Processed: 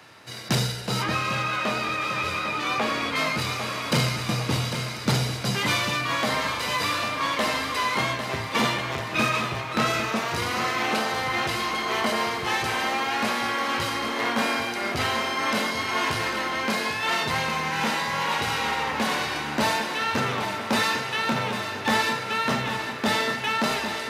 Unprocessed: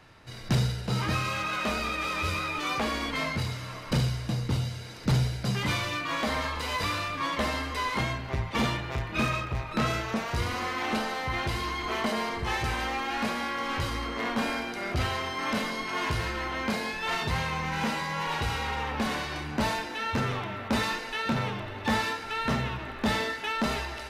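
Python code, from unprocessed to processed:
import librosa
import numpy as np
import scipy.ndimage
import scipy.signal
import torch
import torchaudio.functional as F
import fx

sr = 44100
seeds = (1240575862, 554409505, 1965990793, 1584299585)

y = scipy.signal.sosfilt(scipy.signal.butter(4, 88.0, 'highpass', fs=sr, output='sos'), x)
y = fx.low_shelf(y, sr, hz=170.0, db=-10.5)
y = fx.echo_feedback(y, sr, ms=799, feedback_pct=53, wet_db=-9.0)
y = fx.rider(y, sr, range_db=10, speed_s=2.0)
y = fx.high_shelf(y, sr, hz=5300.0, db=fx.steps((0.0, 5.5), (1.02, -5.5), (3.15, 3.0)))
y = y * librosa.db_to_amplitude(5.0)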